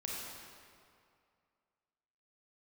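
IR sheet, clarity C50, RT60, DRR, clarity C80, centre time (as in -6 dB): -2.5 dB, 2.3 s, -4.0 dB, -0.5 dB, 130 ms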